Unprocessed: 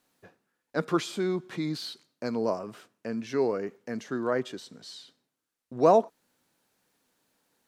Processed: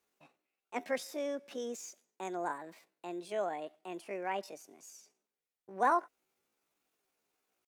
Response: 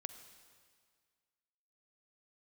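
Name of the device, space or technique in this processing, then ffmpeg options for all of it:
chipmunk voice: -af "asetrate=68011,aresample=44100,atempo=0.64842,volume=-8.5dB"

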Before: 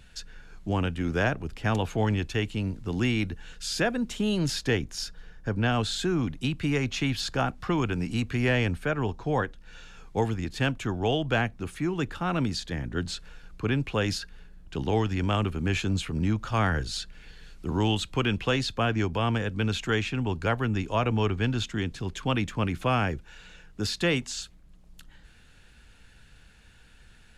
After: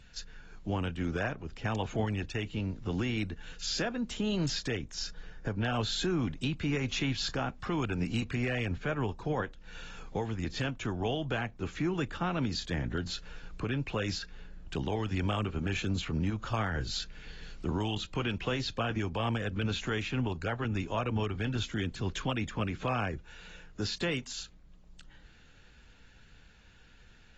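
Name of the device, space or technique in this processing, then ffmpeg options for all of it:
low-bitrate web radio: -af "dynaudnorm=f=450:g=21:m=5dB,alimiter=limit=-19.5dB:level=0:latency=1:release=466,volume=-3dB" -ar 32000 -c:a aac -b:a 24k

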